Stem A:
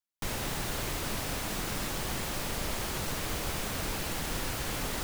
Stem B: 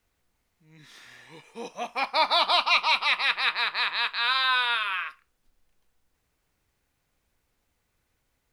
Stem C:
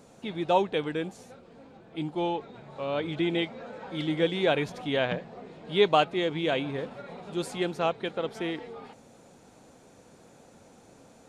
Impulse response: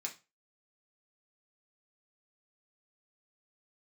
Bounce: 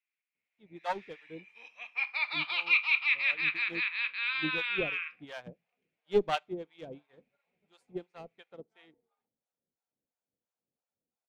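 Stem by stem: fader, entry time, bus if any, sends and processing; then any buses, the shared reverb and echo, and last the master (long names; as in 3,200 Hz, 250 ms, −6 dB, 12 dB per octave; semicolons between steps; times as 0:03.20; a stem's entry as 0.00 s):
muted
−8.5 dB, 0.00 s, send −8.5 dB, resonant band-pass 2,400 Hz, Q 4.7
−5.0 dB, 0.35 s, send −22.5 dB, asymmetric clip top −22.5 dBFS; two-band tremolo in antiphase 2.9 Hz, depth 100%, crossover 620 Hz; expander for the loud parts 2.5 to 1, over −49 dBFS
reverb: on, RT60 0.30 s, pre-delay 3 ms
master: automatic gain control gain up to 7.5 dB; high-shelf EQ 7,400 Hz −6.5 dB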